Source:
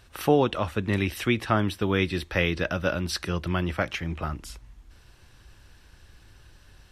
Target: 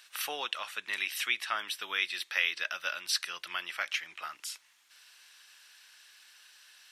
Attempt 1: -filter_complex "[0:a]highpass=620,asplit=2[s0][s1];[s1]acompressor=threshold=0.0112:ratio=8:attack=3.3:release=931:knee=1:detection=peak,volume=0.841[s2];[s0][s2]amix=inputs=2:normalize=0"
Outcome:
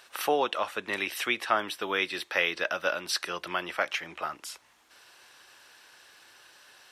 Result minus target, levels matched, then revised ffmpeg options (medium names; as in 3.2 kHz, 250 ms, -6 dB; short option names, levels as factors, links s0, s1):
500 Hz band +13.0 dB
-filter_complex "[0:a]highpass=1900,asplit=2[s0][s1];[s1]acompressor=threshold=0.0112:ratio=8:attack=3.3:release=931:knee=1:detection=peak,volume=0.841[s2];[s0][s2]amix=inputs=2:normalize=0"